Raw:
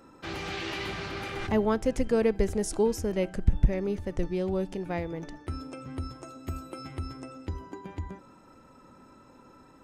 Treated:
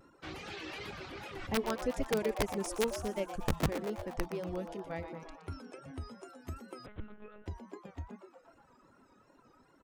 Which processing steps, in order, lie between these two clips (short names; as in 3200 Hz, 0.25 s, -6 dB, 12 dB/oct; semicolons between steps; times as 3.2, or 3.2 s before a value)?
reverb removal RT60 0.54 s; notches 60/120/180/240 Hz; reverb removal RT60 0.76 s; wrapped overs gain 16 dB; vibrato 2.6 Hz 98 cents; frequency-shifting echo 0.119 s, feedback 62%, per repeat +150 Hz, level -10.5 dB; 6.86–7.46 monotone LPC vocoder at 8 kHz 210 Hz; gain -6.5 dB